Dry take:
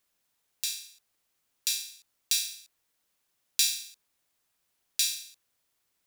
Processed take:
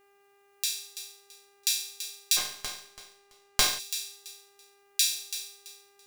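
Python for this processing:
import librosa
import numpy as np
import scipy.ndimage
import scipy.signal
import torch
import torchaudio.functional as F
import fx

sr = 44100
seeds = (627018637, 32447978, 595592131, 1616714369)

y = fx.echo_feedback(x, sr, ms=333, feedback_pct=24, wet_db=-11)
y = fx.dmg_buzz(y, sr, base_hz=400.0, harmonics=7, level_db=-66.0, tilt_db=-5, odd_only=False)
y = fx.running_max(y, sr, window=3, at=(2.36, 3.78), fade=0.02)
y = F.gain(torch.from_numpy(y), 2.0).numpy()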